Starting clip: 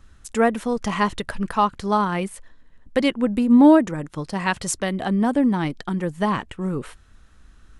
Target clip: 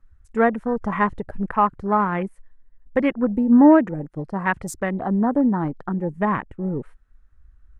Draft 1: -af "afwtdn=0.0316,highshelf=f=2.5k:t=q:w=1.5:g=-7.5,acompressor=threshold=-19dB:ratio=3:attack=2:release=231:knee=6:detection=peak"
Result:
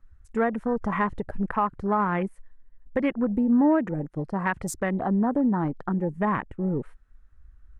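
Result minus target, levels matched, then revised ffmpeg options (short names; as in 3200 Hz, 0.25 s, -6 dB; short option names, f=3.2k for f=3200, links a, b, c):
compressor: peak gain reduction +9 dB
-af "afwtdn=0.0316,highshelf=f=2.5k:t=q:w=1.5:g=-7.5"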